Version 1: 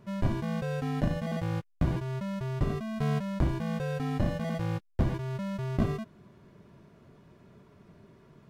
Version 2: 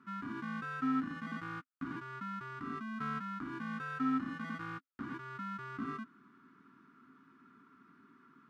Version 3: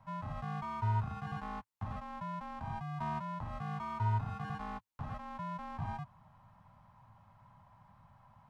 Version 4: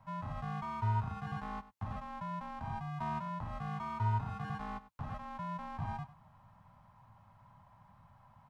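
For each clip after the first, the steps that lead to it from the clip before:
limiter -25 dBFS, peak gain reduction 8 dB; double band-pass 590 Hz, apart 2.3 oct; tilt +3 dB/oct; gain +9.5 dB
frequency shift -370 Hz; gain +1 dB
echo 98 ms -16 dB

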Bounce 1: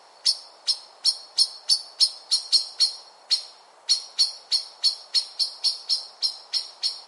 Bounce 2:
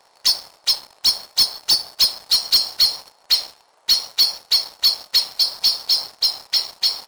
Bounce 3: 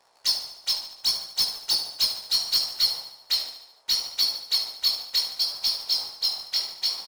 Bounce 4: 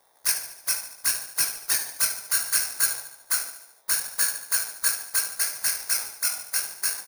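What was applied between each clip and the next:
sample leveller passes 3; dynamic EQ 9100 Hz, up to -6 dB, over -27 dBFS, Q 0.72
chorus 0.7 Hz, delay 16 ms, depth 6.9 ms; on a send: feedback echo 73 ms, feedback 53%, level -10.5 dB; on the sum: gain -4 dB
FFT order left unsorted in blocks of 16 samples; ending taper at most 250 dB/s

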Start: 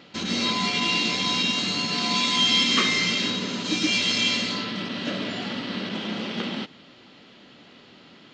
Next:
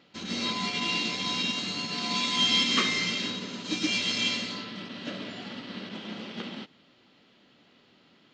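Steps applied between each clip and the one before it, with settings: upward expander 1.5:1, over -34 dBFS; gain -3 dB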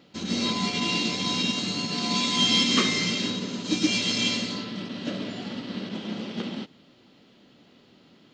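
bell 1900 Hz -7.5 dB 2.9 oct; gain +7.5 dB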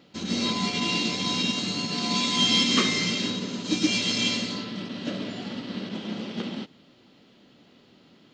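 nothing audible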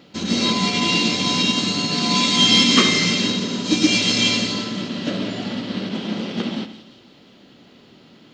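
split-band echo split 3000 Hz, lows 82 ms, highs 0.174 s, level -12 dB; gain +7 dB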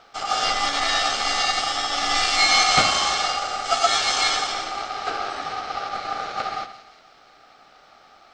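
ring modulator 1000 Hz

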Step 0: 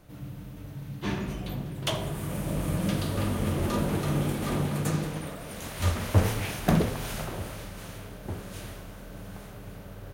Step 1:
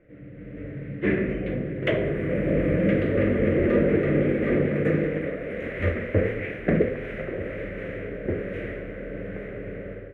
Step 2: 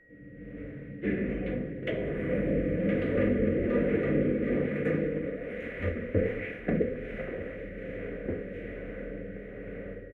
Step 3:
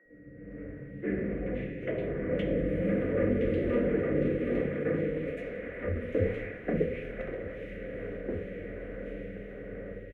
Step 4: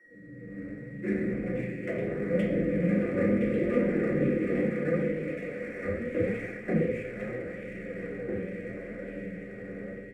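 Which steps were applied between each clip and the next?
EQ curve 140 Hz 0 dB, 520 Hz +14 dB, 890 Hz -14 dB, 2000 Hz +13 dB, 4600 Hz -25 dB; AGC gain up to 11 dB; high shelf 7500 Hz -9.5 dB; gain -7.5 dB
comb 4.1 ms, depth 32%; rotary speaker horn 1.2 Hz; whine 1900 Hz -54 dBFS; gain -4 dB
three bands offset in time mids, lows, highs 50/520 ms, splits 200/2200 Hz
median filter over 9 samples; reverb RT60 0.50 s, pre-delay 3 ms, DRR 0.5 dB; flange 0.77 Hz, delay 2.5 ms, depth 8.5 ms, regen +73%; gain +3 dB

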